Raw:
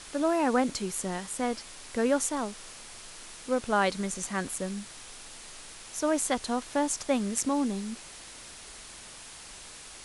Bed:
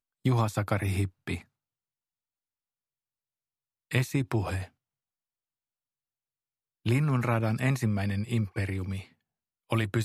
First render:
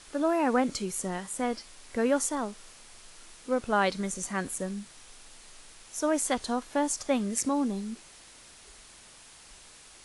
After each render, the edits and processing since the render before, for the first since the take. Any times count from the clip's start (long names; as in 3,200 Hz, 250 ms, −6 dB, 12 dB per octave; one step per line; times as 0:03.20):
noise reduction from a noise print 6 dB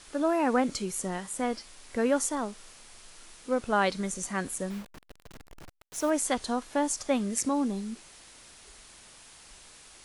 0:04.70–0:06.10: hold until the input has moved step −40.5 dBFS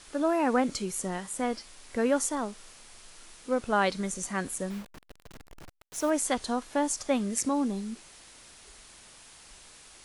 no processing that can be heard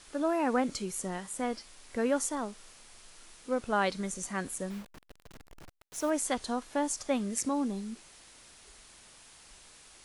level −3 dB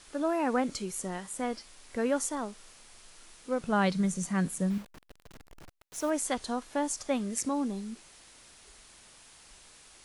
0:03.60–0:04.78: parametric band 170 Hz +14.5 dB 0.57 octaves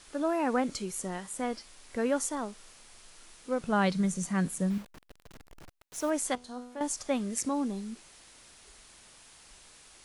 0:06.35–0:06.81: tuned comb filter 82 Hz, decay 0.77 s, mix 80%